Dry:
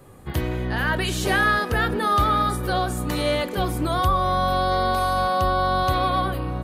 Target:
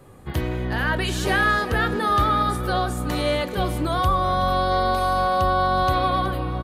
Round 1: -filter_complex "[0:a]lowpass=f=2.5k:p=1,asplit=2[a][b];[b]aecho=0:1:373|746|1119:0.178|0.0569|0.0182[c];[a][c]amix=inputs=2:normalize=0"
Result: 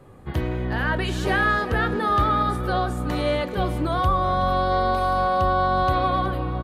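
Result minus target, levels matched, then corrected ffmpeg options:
8000 Hz band -7.0 dB
-filter_complex "[0:a]lowpass=f=8.8k:p=1,asplit=2[a][b];[b]aecho=0:1:373|746|1119:0.178|0.0569|0.0182[c];[a][c]amix=inputs=2:normalize=0"

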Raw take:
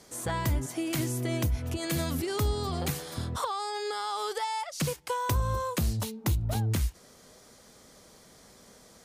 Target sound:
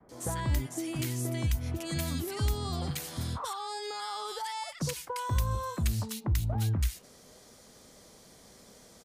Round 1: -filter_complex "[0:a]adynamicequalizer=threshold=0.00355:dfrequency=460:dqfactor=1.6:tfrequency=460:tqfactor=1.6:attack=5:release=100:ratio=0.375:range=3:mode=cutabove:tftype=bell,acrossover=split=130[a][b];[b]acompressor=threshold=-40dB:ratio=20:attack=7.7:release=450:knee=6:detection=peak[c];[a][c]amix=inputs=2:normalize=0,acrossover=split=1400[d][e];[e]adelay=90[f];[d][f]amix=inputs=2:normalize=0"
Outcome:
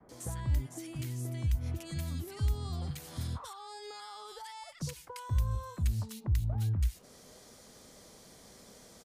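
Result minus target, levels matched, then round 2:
compressor: peak gain reduction +11 dB
-filter_complex "[0:a]adynamicequalizer=threshold=0.00355:dfrequency=460:dqfactor=1.6:tfrequency=460:tqfactor=1.6:attack=5:release=100:ratio=0.375:range=3:mode=cutabove:tftype=bell,acrossover=split=130[a][b];[b]acompressor=threshold=-28dB:ratio=20:attack=7.7:release=450:knee=6:detection=peak[c];[a][c]amix=inputs=2:normalize=0,acrossover=split=1400[d][e];[e]adelay=90[f];[d][f]amix=inputs=2:normalize=0"

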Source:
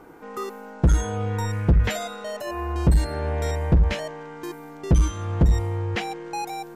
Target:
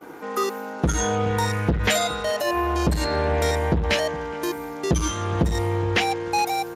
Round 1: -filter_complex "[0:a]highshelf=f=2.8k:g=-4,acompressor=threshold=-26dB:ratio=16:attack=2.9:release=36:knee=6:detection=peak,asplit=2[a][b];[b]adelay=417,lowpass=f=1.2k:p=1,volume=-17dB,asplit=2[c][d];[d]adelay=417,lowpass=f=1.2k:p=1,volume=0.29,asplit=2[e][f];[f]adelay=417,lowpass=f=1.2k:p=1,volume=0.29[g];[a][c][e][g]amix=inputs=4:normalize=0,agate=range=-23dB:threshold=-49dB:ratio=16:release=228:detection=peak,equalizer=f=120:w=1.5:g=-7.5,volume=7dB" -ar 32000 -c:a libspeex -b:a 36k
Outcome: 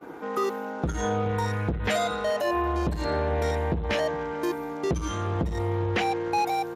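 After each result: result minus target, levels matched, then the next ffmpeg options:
compressor: peak gain reduction +7 dB; 4000 Hz band -4.5 dB
-filter_complex "[0:a]highshelf=f=2.8k:g=-4,acompressor=threshold=-18.5dB:ratio=16:attack=2.9:release=36:knee=6:detection=peak,asplit=2[a][b];[b]adelay=417,lowpass=f=1.2k:p=1,volume=-17dB,asplit=2[c][d];[d]adelay=417,lowpass=f=1.2k:p=1,volume=0.29,asplit=2[e][f];[f]adelay=417,lowpass=f=1.2k:p=1,volume=0.29[g];[a][c][e][g]amix=inputs=4:normalize=0,agate=range=-23dB:threshold=-49dB:ratio=16:release=228:detection=peak,equalizer=f=120:w=1.5:g=-7.5,volume=7dB" -ar 32000 -c:a libspeex -b:a 36k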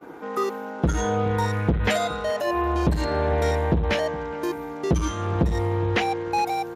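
4000 Hz band -5.0 dB
-filter_complex "[0:a]highshelf=f=2.8k:g=6,acompressor=threshold=-18.5dB:ratio=16:attack=2.9:release=36:knee=6:detection=peak,asplit=2[a][b];[b]adelay=417,lowpass=f=1.2k:p=1,volume=-17dB,asplit=2[c][d];[d]adelay=417,lowpass=f=1.2k:p=1,volume=0.29,asplit=2[e][f];[f]adelay=417,lowpass=f=1.2k:p=1,volume=0.29[g];[a][c][e][g]amix=inputs=4:normalize=0,agate=range=-23dB:threshold=-49dB:ratio=16:release=228:detection=peak,equalizer=f=120:w=1.5:g=-7.5,volume=7dB" -ar 32000 -c:a libspeex -b:a 36k

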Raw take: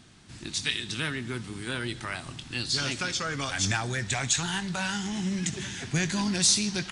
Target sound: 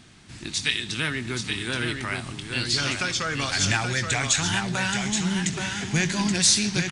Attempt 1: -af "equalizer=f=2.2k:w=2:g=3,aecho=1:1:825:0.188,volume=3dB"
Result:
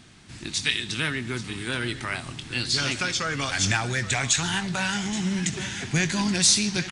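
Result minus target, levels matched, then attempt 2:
echo-to-direct -9 dB
-af "equalizer=f=2.2k:w=2:g=3,aecho=1:1:825:0.531,volume=3dB"

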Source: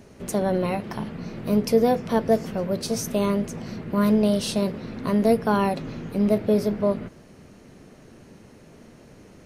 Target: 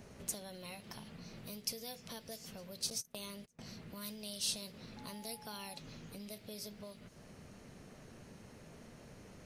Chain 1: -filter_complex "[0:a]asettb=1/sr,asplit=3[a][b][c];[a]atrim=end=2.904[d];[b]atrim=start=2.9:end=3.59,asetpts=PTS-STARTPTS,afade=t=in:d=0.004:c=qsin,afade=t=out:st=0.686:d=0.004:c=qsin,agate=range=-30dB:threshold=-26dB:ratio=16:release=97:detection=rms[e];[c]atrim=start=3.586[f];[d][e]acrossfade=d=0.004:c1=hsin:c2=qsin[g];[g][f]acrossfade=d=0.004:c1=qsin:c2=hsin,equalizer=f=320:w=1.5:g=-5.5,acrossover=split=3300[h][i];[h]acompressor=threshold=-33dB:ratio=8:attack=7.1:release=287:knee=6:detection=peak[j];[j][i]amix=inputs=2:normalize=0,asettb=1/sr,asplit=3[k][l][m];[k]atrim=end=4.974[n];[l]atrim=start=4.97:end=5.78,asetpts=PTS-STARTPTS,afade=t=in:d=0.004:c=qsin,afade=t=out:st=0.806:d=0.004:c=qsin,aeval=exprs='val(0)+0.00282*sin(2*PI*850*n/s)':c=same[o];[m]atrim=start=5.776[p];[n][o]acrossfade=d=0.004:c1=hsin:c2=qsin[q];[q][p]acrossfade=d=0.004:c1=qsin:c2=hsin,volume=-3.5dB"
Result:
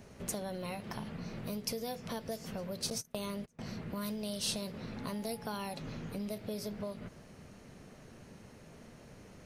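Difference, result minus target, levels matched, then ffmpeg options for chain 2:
compressor: peak gain reduction -10 dB
-filter_complex "[0:a]asettb=1/sr,asplit=3[a][b][c];[a]atrim=end=2.904[d];[b]atrim=start=2.9:end=3.59,asetpts=PTS-STARTPTS,afade=t=in:d=0.004:c=qsin,afade=t=out:st=0.686:d=0.004:c=qsin,agate=range=-30dB:threshold=-26dB:ratio=16:release=97:detection=rms[e];[c]atrim=start=3.586[f];[d][e]acrossfade=d=0.004:c1=hsin:c2=qsin[g];[g][f]acrossfade=d=0.004:c1=qsin:c2=hsin,equalizer=f=320:w=1.5:g=-5.5,acrossover=split=3300[h][i];[h]acompressor=threshold=-44.5dB:ratio=8:attack=7.1:release=287:knee=6:detection=peak[j];[j][i]amix=inputs=2:normalize=0,asettb=1/sr,asplit=3[k][l][m];[k]atrim=end=4.974[n];[l]atrim=start=4.97:end=5.78,asetpts=PTS-STARTPTS,afade=t=in:d=0.004:c=qsin,afade=t=out:st=0.806:d=0.004:c=qsin,aeval=exprs='val(0)+0.00282*sin(2*PI*850*n/s)':c=same[o];[m]atrim=start=5.776[p];[n][o]acrossfade=d=0.004:c1=hsin:c2=qsin[q];[q][p]acrossfade=d=0.004:c1=qsin:c2=hsin,volume=-3.5dB"

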